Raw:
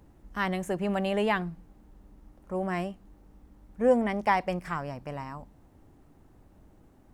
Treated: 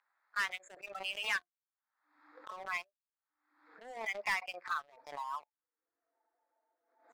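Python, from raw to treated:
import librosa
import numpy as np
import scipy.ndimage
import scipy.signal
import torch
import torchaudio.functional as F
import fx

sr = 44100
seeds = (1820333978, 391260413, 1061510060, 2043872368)

y = fx.wiener(x, sr, points=15)
y = fx.recorder_agc(y, sr, target_db=-17.0, rise_db_per_s=22.0, max_gain_db=30)
y = scipy.signal.sosfilt(scipy.signal.butter(4, 5000.0, 'lowpass', fs=sr, output='sos'), y)
y = fx.noise_reduce_blind(y, sr, reduce_db=28)
y = scipy.signal.sosfilt(scipy.signal.butter(4, 1400.0, 'highpass', fs=sr, output='sos'), y)
y = fx.high_shelf(y, sr, hz=3400.0, db=-3.0)
y = fx.leveller(y, sr, passes=3)
y = fx.pre_swell(y, sr, db_per_s=79.0)
y = y * librosa.db_to_amplitude(-6.0)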